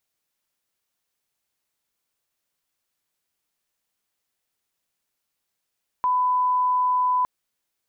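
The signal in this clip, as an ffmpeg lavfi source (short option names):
-f lavfi -i "sine=f=1000:d=1.21:r=44100,volume=0.06dB"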